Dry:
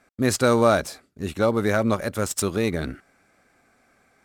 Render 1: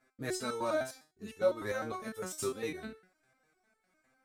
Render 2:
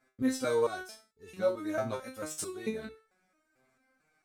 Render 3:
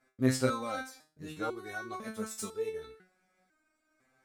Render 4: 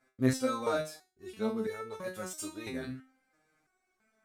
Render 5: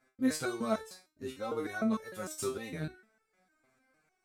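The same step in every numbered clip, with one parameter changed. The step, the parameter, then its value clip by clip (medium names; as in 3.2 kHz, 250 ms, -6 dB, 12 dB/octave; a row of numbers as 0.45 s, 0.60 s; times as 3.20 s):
resonator arpeggio, rate: 9.9 Hz, 4.5 Hz, 2 Hz, 3 Hz, 6.6 Hz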